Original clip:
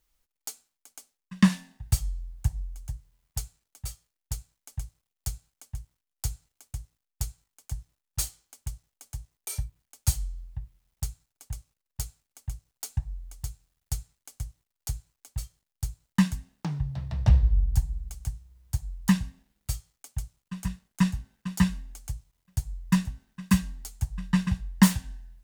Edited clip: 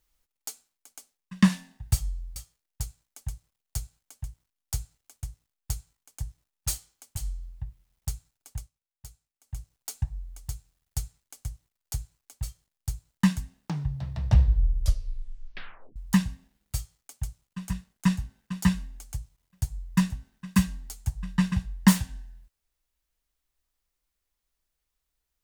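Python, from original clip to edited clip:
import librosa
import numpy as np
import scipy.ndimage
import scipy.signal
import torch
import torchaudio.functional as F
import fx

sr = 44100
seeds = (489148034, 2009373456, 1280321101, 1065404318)

y = fx.edit(x, sr, fx.cut(start_s=2.36, length_s=1.51),
    fx.cut(start_s=8.68, length_s=1.44),
    fx.fade_down_up(start_s=11.52, length_s=1.02, db=-12.5, fade_s=0.15),
    fx.tape_stop(start_s=17.41, length_s=1.5), tone=tone)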